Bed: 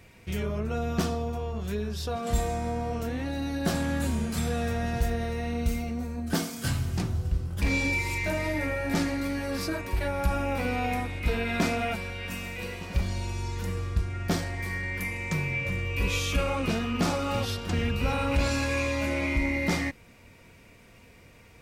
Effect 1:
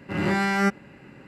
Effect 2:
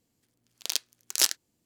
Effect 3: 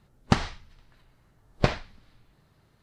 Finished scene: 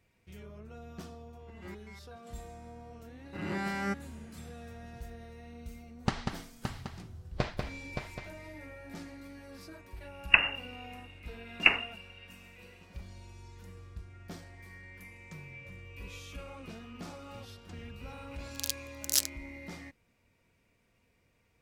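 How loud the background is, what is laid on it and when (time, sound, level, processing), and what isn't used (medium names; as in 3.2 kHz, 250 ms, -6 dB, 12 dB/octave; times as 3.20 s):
bed -18 dB
1.38 s: add 1 -14 dB + resonator arpeggio 8.2 Hz 66–570 Hz
3.24 s: add 1 -11.5 dB
5.76 s: add 3 -9 dB + multi-tap echo 191/570/776 ms -5.5/-7/-12.5 dB
10.02 s: add 3 -0.5 dB + frequency inversion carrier 2.8 kHz
17.94 s: add 2 -12.5 dB + tilt EQ +3 dB/octave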